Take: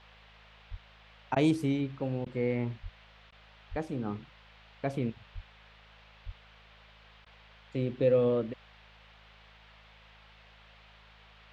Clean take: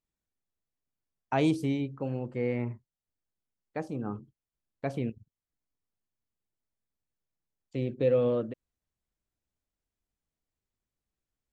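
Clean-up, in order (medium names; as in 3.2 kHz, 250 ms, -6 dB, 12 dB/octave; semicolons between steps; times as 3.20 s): de-hum 53.5 Hz, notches 4; de-plosive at 0.70/2.82/3.70/5.34/6.25 s; interpolate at 1.35/2.25/3.31/7.25 s, 11 ms; noise print and reduce 30 dB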